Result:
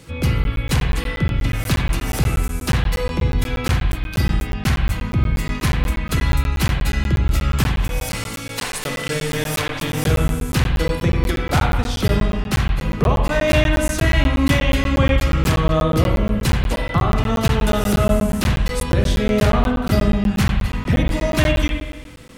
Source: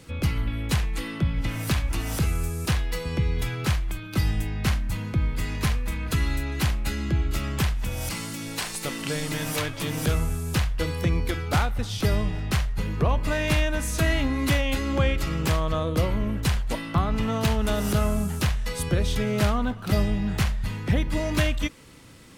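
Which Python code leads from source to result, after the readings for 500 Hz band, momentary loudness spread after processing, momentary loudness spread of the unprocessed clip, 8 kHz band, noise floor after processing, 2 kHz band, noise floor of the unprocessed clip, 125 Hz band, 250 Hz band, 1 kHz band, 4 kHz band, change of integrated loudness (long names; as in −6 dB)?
+7.5 dB, 5 LU, 5 LU, +4.0 dB, −29 dBFS, +6.5 dB, −36 dBFS, +6.0 dB, +7.0 dB, +7.0 dB, +5.5 dB, +6.5 dB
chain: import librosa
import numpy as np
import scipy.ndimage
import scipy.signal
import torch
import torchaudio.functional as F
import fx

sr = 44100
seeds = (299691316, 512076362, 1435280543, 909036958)

y = fx.rev_spring(x, sr, rt60_s=1.1, pass_ms=(44, 52), chirp_ms=45, drr_db=1.0)
y = fx.buffer_crackle(y, sr, first_s=0.44, period_s=0.12, block=512, kind='zero')
y = F.gain(torch.from_numpy(y), 4.5).numpy()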